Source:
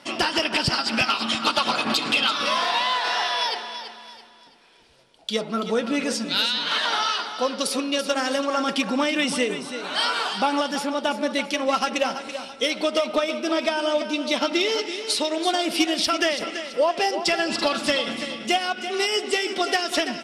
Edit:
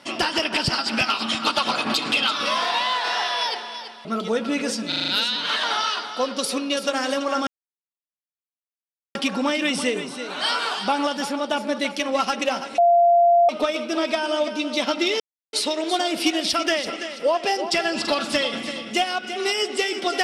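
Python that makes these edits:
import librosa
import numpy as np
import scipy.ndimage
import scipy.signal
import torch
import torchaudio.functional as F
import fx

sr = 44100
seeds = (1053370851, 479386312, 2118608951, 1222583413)

y = fx.edit(x, sr, fx.cut(start_s=4.05, length_s=1.42),
    fx.stutter(start_s=6.3, slice_s=0.04, count=6),
    fx.insert_silence(at_s=8.69, length_s=1.68),
    fx.bleep(start_s=12.32, length_s=0.71, hz=691.0, db=-12.0),
    fx.silence(start_s=14.74, length_s=0.33), tone=tone)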